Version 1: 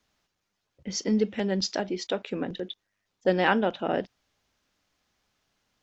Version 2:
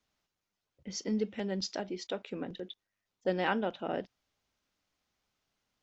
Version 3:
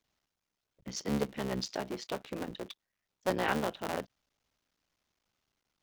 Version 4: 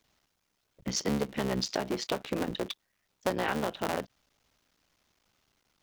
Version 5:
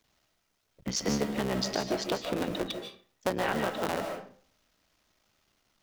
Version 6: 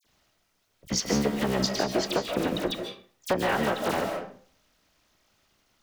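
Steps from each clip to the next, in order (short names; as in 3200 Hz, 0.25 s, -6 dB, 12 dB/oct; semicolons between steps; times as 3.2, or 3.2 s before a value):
notch 1700 Hz, Q 26; gain -7.5 dB
cycle switcher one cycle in 3, muted; gain +1.5 dB
compressor 6:1, threshold -35 dBFS, peak gain reduction 10.5 dB; gain +9 dB
digital reverb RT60 0.48 s, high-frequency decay 0.7×, pre-delay 0.105 s, DRR 4.5 dB
dispersion lows, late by 45 ms, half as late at 3000 Hz; gain +4 dB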